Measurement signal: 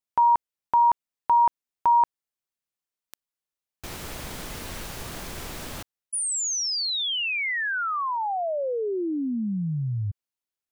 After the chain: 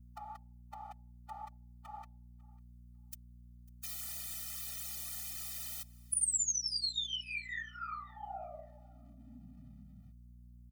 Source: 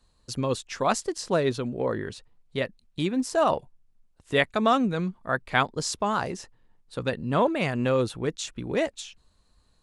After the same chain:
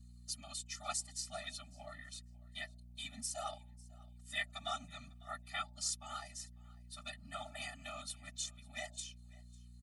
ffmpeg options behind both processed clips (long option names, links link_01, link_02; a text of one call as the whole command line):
ffmpeg -i in.wav -filter_complex "[0:a]bandreject=frequency=298.7:width_type=h:width=4,bandreject=frequency=597.4:width_type=h:width=4,bandreject=frequency=896.1:width_type=h:width=4,afftfilt=real='hypot(re,im)*cos(2*PI*random(0))':imag='hypot(re,im)*sin(2*PI*random(1))':win_size=512:overlap=0.75,aderivative,asplit=2[link_01][link_02];[link_02]acompressor=threshold=-45dB:ratio=16:attack=14:release=745:knee=6:detection=rms,volume=1.5dB[link_03];[link_01][link_03]amix=inputs=2:normalize=0,aeval=exprs='val(0)+0.00141*(sin(2*PI*60*n/s)+sin(2*PI*2*60*n/s)/2+sin(2*PI*3*60*n/s)/3+sin(2*PI*4*60*n/s)/4+sin(2*PI*5*60*n/s)/5)':channel_layout=same,areverse,acompressor=mode=upward:threshold=-55dB:ratio=4:attack=0.13:release=50:knee=2.83:detection=peak,areverse,aecho=1:1:548|1096:0.0668|0.0114,afftfilt=real='re*eq(mod(floor(b*sr/1024/290),2),0)':imag='im*eq(mod(floor(b*sr/1024/290),2),0)':win_size=1024:overlap=0.75,volume=2dB" out.wav